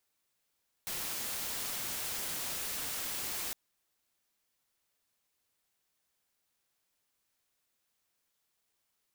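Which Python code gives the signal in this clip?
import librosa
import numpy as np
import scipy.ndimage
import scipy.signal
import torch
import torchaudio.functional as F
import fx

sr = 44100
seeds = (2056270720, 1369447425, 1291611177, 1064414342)

y = fx.noise_colour(sr, seeds[0], length_s=2.66, colour='white', level_db=-37.5)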